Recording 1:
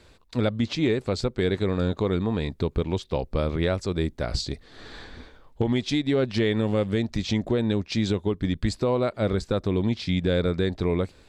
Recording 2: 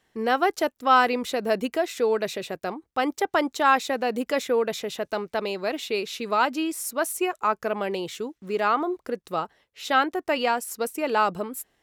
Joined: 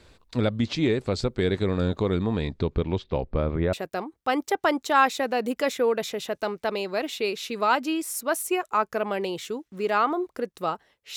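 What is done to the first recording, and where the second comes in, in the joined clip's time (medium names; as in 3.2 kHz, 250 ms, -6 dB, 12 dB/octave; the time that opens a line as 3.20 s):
recording 1
2.41–3.73 s: low-pass 7 kHz -> 1.5 kHz
3.73 s: go over to recording 2 from 2.43 s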